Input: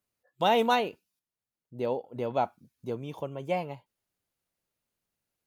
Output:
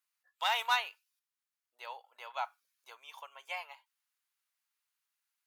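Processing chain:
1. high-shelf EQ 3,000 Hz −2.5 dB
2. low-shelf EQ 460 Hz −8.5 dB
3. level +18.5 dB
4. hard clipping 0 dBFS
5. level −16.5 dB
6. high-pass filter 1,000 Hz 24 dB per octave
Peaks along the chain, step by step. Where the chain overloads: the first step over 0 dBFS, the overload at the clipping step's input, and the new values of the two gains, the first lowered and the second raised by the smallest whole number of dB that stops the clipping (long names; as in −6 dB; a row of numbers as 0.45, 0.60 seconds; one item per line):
−11.5, −14.0, +4.5, 0.0, −16.5, −17.5 dBFS
step 3, 4.5 dB
step 3 +13.5 dB, step 5 −11.5 dB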